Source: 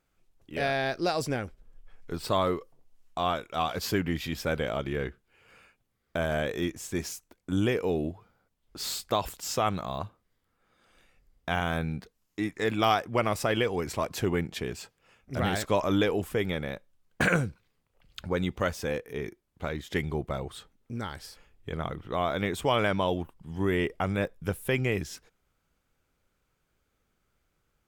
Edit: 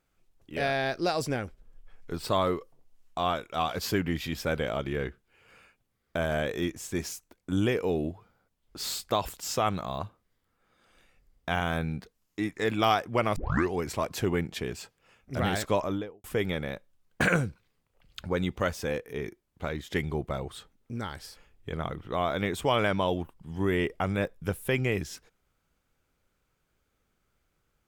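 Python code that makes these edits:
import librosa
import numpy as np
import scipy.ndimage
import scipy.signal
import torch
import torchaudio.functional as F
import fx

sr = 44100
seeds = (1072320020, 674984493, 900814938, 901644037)

y = fx.studio_fade_out(x, sr, start_s=15.66, length_s=0.58)
y = fx.edit(y, sr, fx.tape_start(start_s=13.36, length_s=0.37), tone=tone)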